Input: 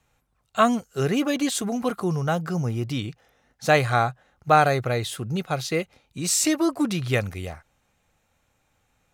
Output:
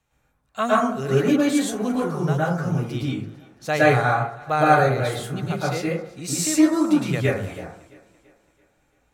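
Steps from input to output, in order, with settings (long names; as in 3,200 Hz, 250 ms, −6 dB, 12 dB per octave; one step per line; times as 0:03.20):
on a send: feedback echo with a high-pass in the loop 335 ms, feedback 49%, high-pass 160 Hz, level −21.5 dB
on the sum: dense smooth reverb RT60 0.52 s, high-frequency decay 0.35×, pre-delay 100 ms, DRR −7 dB
level −6 dB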